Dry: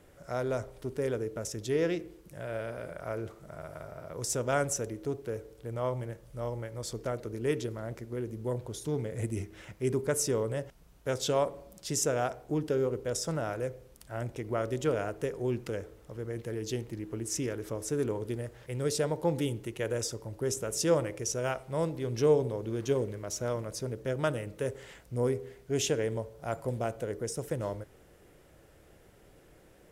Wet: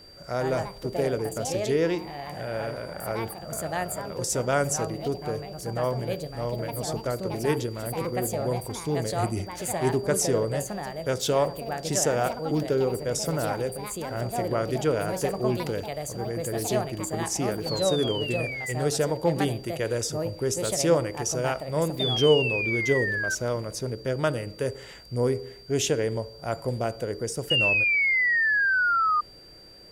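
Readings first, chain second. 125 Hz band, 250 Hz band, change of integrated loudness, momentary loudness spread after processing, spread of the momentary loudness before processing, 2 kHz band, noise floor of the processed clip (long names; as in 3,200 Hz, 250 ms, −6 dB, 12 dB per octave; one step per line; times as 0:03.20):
+5.0 dB, +5.5 dB, +6.5 dB, 11 LU, 10 LU, +16.5 dB, −45 dBFS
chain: sound drawn into the spectrogram fall, 0:27.50–0:29.21, 1,200–2,900 Hz −27 dBFS
delay with pitch and tempo change per echo 165 ms, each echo +4 semitones, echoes 2, each echo −6 dB
steady tone 4,700 Hz −53 dBFS
level +4.5 dB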